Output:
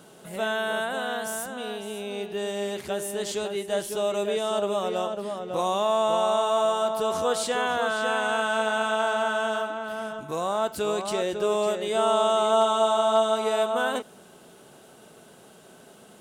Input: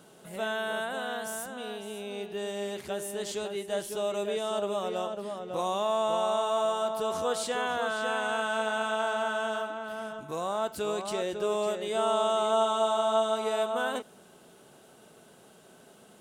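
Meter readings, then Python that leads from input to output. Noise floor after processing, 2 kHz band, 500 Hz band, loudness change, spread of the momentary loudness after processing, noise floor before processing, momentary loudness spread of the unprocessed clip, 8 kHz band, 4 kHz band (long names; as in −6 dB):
−51 dBFS, +4.5 dB, +4.5 dB, +4.5 dB, 11 LU, −56 dBFS, 11 LU, +4.5 dB, +4.5 dB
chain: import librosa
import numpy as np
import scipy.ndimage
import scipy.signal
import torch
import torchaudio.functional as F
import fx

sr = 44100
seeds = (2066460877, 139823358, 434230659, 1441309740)

y = np.clip(x, -10.0 ** (-15.0 / 20.0), 10.0 ** (-15.0 / 20.0))
y = y * 10.0 ** (4.5 / 20.0)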